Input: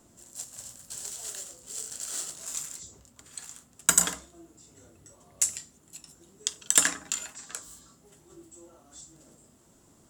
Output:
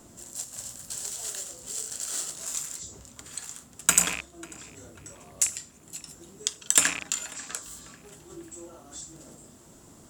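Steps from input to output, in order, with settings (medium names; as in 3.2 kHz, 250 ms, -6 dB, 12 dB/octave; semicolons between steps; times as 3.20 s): rattle on loud lows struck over -50 dBFS, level -20 dBFS; in parallel at +3 dB: compression, threshold -45 dBFS, peak gain reduction 27.5 dB; on the sum: filtered feedback delay 543 ms, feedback 46%, low-pass 4.1 kHz, level -19 dB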